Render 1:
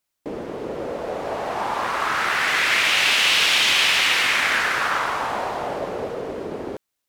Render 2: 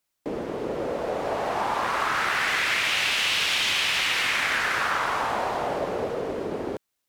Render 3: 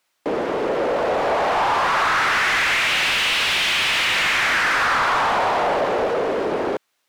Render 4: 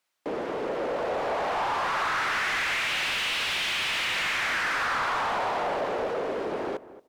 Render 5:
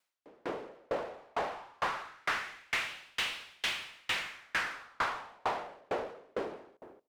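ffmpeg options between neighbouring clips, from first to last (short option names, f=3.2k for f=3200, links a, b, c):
-filter_complex "[0:a]acrossover=split=150[a][b];[b]acompressor=threshold=-21dB:ratio=6[c];[a][c]amix=inputs=2:normalize=0"
-filter_complex "[0:a]asplit=2[a][b];[b]highpass=f=720:p=1,volume=21dB,asoftclip=type=tanh:threshold=-11dB[c];[a][c]amix=inputs=2:normalize=0,lowpass=f=2.9k:p=1,volume=-6dB"
-filter_complex "[0:a]asplit=2[a][b];[b]adelay=227,lowpass=f=1.2k:p=1,volume=-15dB,asplit=2[c][d];[d]adelay=227,lowpass=f=1.2k:p=1,volume=0.16[e];[a][c][e]amix=inputs=3:normalize=0,volume=-8.5dB"
-af "aeval=exprs='val(0)*pow(10,-38*if(lt(mod(2.2*n/s,1),2*abs(2.2)/1000),1-mod(2.2*n/s,1)/(2*abs(2.2)/1000),(mod(2.2*n/s,1)-2*abs(2.2)/1000)/(1-2*abs(2.2)/1000))/20)':c=same"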